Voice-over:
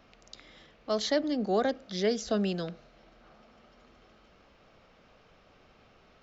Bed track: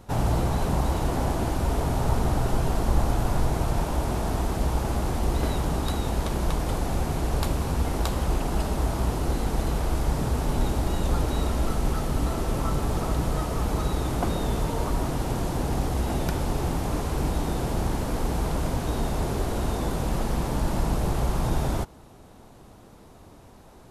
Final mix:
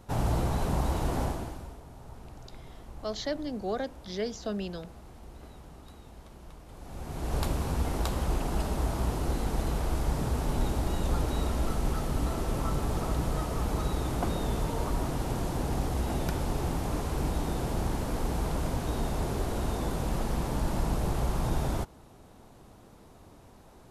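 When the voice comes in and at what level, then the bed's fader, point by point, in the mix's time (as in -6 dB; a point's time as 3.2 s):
2.15 s, -5.0 dB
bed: 1.23 s -4 dB
1.81 s -23 dB
6.67 s -23 dB
7.36 s -4 dB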